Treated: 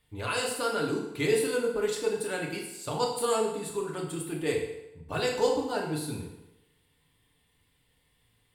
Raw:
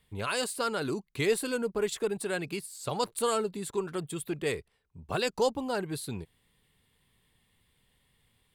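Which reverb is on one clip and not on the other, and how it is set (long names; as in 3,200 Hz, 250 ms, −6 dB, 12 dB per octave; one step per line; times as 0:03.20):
feedback delay network reverb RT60 0.91 s, low-frequency decay 0.85×, high-frequency decay 0.85×, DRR −2 dB
level −3 dB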